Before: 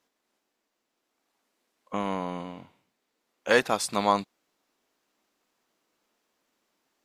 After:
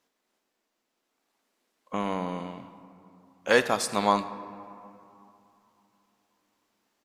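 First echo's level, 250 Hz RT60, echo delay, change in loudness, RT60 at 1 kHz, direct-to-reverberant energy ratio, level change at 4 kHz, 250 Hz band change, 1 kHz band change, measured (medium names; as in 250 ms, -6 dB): -19.5 dB, 3.4 s, 80 ms, 0.0 dB, 3.0 s, 11.5 dB, 0.0 dB, +1.0 dB, +0.5 dB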